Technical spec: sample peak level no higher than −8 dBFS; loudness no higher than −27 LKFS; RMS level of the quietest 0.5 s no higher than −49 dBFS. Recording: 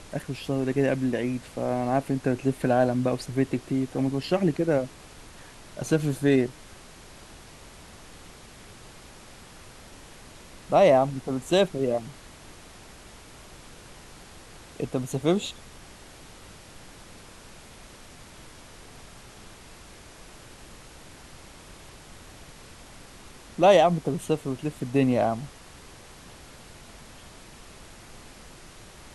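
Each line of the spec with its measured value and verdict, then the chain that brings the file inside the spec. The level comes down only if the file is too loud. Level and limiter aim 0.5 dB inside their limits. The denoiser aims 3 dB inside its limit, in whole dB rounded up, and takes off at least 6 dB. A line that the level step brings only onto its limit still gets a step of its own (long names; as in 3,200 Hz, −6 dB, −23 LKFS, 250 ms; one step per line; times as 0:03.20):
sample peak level −7.0 dBFS: out of spec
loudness −25.0 LKFS: out of spec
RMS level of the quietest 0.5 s −47 dBFS: out of spec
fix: level −2.5 dB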